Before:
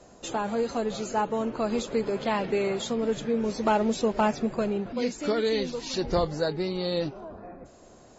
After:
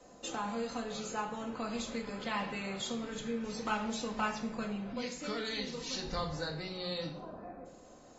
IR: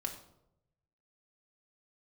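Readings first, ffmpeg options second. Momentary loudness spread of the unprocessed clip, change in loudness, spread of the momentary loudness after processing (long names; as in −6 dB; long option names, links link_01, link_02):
6 LU, −9.5 dB, 7 LU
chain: -filter_complex "[0:a]lowshelf=frequency=140:gain=-7,acrossover=split=190|950|3600[link_01][link_02][link_03][link_04];[link_02]acompressor=threshold=-39dB:ratio=10[link_05];[link_01][link_05][link_03][link_04]amix=inputs=4:normalize=0[link_06];[1:a]atrim=start_sample=2205,asetrate=41013,aresample=44100[link_07];[link_06][link_07]afir=irnorm=-1:irlink=0,volume=-4dB"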